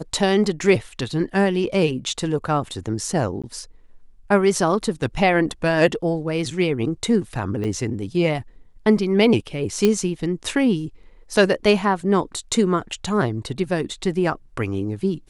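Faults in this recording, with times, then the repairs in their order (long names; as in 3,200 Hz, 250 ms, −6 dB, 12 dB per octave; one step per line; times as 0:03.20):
0:03.42–0:03.44: drop-out 16 ms
0:07.64–0:07.65: drop-out 5.4 ms
0:09.85: click −5 dBFS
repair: click removal
repair the gap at 0:03.42, 16 ms
repair the gap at 0:07.64, 5.4 ms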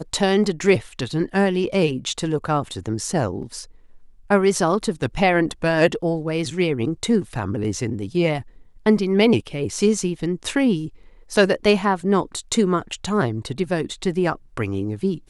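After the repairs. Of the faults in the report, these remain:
none of them is left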